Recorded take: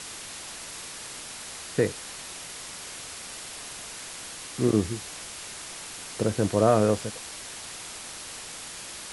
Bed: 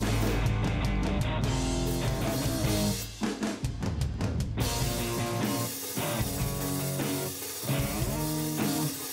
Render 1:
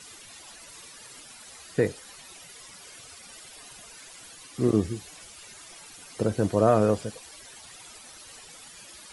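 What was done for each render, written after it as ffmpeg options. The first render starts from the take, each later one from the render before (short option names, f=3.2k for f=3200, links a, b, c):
-af "afftdn=nr=13:nf=-40"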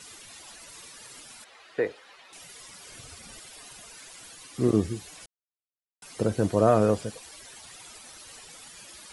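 -filter_complex "[0:a]asettb=1/sr,asplit=3[a][b][c];[a]atrim=end=1.444[d];[b]atrim=start=1.44:end=2.33,asetpts=PTS-STARTPTS,afade=t=in:d=0.004:c=qsin,afade=t=out:st=0.886:d=0.004:c=qsin,acrossover=split=350 3900:gain=0.126 1 0.0891[e][f][g];[e][f][g]amix=inputs=3:normalize=0[h];[c]atrim=start=2.326[i];[d][h]acrossfade=d=0.004:c1=hsin:c2=qsin[j];[j][i]acrossfade=d=0.004:c1=qsin:c2=hsin,asettb=1/sr,asplit=3[k][l][m];[k]atrim=end=2.894[n];[l]atrim=start=2.89:end=3.4,asetpts=PTS-STARTPTS,afade=t=in:d=0.004:c=qsin,afade=t=out:st=0.506:d=0.004:c=qsin,lowshelf=f=260:g=11.5[o];[m]atrim=start=3.396[p];[n][o]acrossfade=d=0.004:c1=hsin:c2=qsin[q];[q][p]acrossfade=d=0.004:c1=qsin:c2=hsin,asplit=3[r][s][t];[r]atrim=end=5.26,asetpts=PTS-STARTPTS,afade=t=out:st=5.256:d=0.004:c=hsin[u];[s]atrim=start=5.26:end=6.02,asetpts=PTS-STARTPTS,volume=0[v];[t]atrim=start=6.02,asetpts=PTS-STARTPTS,afade=t=in:d=0.004:c=hsin[w];[u][v][w]concat=n=3:v=0:a=1"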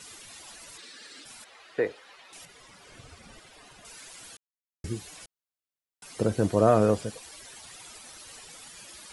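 -filter_complex "[0:a]asplit=3[a][b][c];[a]afade=t=out:st=0.77:d=0.02[d];[b]highpass=f=200:w=0.5412,highpass=f=200:w=1.3066,equalizer=f=280:t=q:w=4:g=5,equalizer=f=660:t=q:w=4:g=-4,equalizer=f=980:t=q:w=4:g=-9,equalizer=f=1.7k:t=q:w=4:g=5,equalizer=f=4.1k:t=q:w=4:g=6,equalizer=f=6.6k:t=q:w=4:g=-6,lowpass=f=7.9k:w=0.5412,lowpass=f=7.9k:w=1.3066,afade=t=in:st=0.77:d=0.02,afade=t=out:st=1.24:d=0.02[e];[c]afade=t=in:st=1.24:d=0.02[f];[d][e][f]amix=inputs=3:normalize=0,asettb=1/sr,asplit=3[g][h][i];[g]atrim=end=2.454[j];[h]atrim=start=2.45:end=3.85,asetpts=PTS-STARTPTS,afade=t=in:d=0.004:c=qsin,afade=t=out:st=1.396:d=0.004:c=qsin,lowpass=f=2.2k:p=1[k];[i]atrim=start=3.846[l];[j][k]acrossfade=d=0.004:c1=hsin:c2=qsin[m];[m][l]acrossfade=d=0.004:c1=qsin:c2=hsin,asplit=3[n][o][p];[n]atrim=end=4.37,asetpts=PTS-STARTPTS,afade=t=out:st=4.366:d=0.004:c=hsin[q];[o]atrim=start=4.37:end=4.84,asetpts=PTS-STARTPTS,volume=0[r];[p]atrim=start=4.84,asetpts=PTS-STARTPTS,afade=t=in:d=0.004:c=hsin[s];[q][r][s]concat=n=3:v=0:a=1"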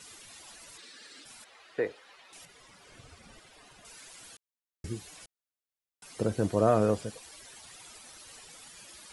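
-af "volume=-3.5dB"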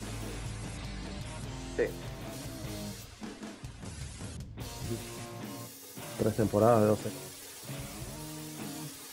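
-filter_complex "[1:a]volume=-12.5dB[a];[0:a][a]amix=inputs=2:normalize=0"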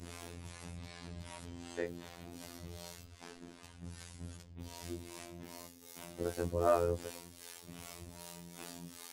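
-filter_complex "[0:a]acrossover=split=400[a][b];[a]aeval=exprs='val(0)*(1-0.7/2+0.7/2*cos(2*PI*2.6*n/s))':c=same[c];[b]aeval=exprs='val(0)*(1-0.7/2-0.7/2*cos(2*PI*2.6*n/s))':c=same[d];[c][d]amix=inputs=2:normalize=0,afftfilt=real='hypot(re,im)*cos(PI*b)':imag='0':win_size=2048:overlap=0.75"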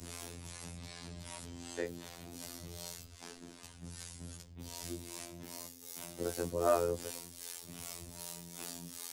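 -filter_complex "[0:a]acrossover=split=120|670|4200[a][b][c][d];[a]alimiter=level_in=23.5dB:limit=-24dB:level=0:latency=1,volume=-23.5dB[e];[d]acontrast=79[f];[e][b][c][f]amix=inputs=4:normalize=0"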